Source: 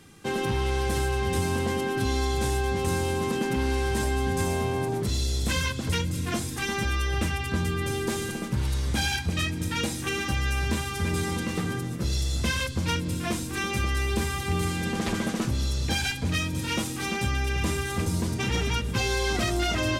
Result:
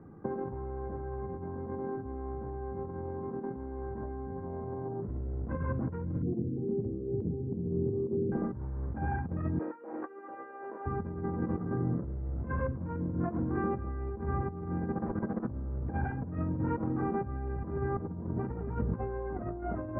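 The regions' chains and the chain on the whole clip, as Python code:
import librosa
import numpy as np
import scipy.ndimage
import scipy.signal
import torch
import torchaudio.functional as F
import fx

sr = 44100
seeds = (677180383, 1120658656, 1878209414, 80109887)

y = fx.chain(x, sr, fx.ellip_bandpass(low_hz=100.0, high_hz=460.0, order=3, stop_db=50),
    fx.echo_single(ms=787, db=-21.0), at=(6.22, 8.32))
y = fx.chain(y, sr, fx.highpass(hz=390.0, slope=24),
    fx.over_compress(threshold_db=-37.0, ratio=-0.5), at=(9.59, 10.86))
y = scipy.signal.sosfilt(scipy.signal.bessel(8, 790.0, 'lowpass', norm='mag', fs=sr, output='sos'), y)
y = fx.low_shelf(y, sr, hz=62.0, db=-9.0)
y = fx.over_compress(y, sr, threshold_db=-33.0, ratio=-0.5)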